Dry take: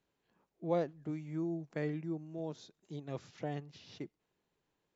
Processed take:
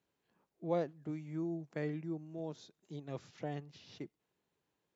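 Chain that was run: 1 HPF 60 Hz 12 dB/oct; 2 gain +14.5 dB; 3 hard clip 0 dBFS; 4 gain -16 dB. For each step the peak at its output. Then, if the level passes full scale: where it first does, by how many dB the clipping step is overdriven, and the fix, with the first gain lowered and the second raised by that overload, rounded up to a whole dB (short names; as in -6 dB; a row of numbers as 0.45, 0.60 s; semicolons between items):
-20.5, -6.0, -6.0, -22.0 dBFS; no overload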